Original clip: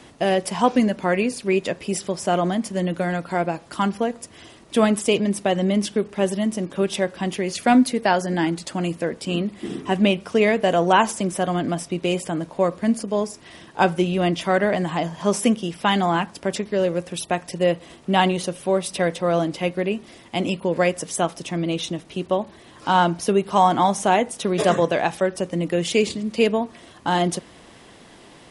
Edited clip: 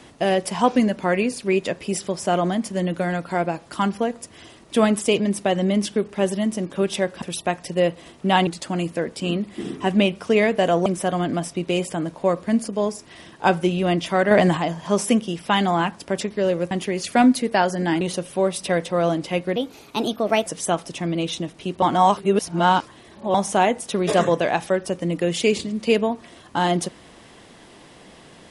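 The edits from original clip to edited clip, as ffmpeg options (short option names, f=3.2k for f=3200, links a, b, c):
-filter_complex "[0:a]asplit=12[a][b][c][d][e][f][g][h][i][j][k][l];[a]atrim=end=7.222[m];[b]atrim=start=17.058:end=18.312[n];[c]atrim=start=8.518:end=10.912[o];[d]atrim=start=11.208:end=14.662[p];[e]atrim=start=14.658:end=14.922,asetpts=PTS-STARTPTS,volume=6.5dB[q];[f]atrim=start=14.918:end=17.062[r];[g]atrim=start=7.218:end=8.522[s];[h]atrim=start=18.308:end=19.864[t];[i]atrim=start=19.86:end=20.97,asetpts=PTS-STARTPTS,asetrate=54243,aresample=44100[u];[j]atrim=start=20.966:end=22.332[v];[k]atrim=start=22.328:end=23.852,asetpts=PTS-STARTPTS,areverse[w];[l]atrim=start=23.848[x];[m][n]acrossfade=d=0.004:c1=hsin:c2=hsin[y];[y][o]acrossfade=d=0.004:c1=hsin:c2=hsin[z];[z][p]acrossfade=d=0.004:c1=hsin:c2=hsin[aa];[aa][q]acrossfade=d=0.004:c1=hsin:c2=hsin[ab];[ab][r]acrossfade=d=0.004:c1=hsin:c2=hsin[ac];[ac][s]acrossfade=d=0.004:c1=hsin:c2=hsin[ad];[ad][t]acrossfade=d=0.004:c1=hsin:c2=hsin[ae];[ae][u]acrossfade=d=0.004:c1=hsin:c2=hsin[af];[af][v]acrossfade=d=0.004:c1=hsin:c2=hsin[ag];[ag][w]acrossfade=d=0.004:c1=hsin:c2=hsin[ah];[ah][x]acrossfade=d=0.004:c1=hsin:c2=hsin"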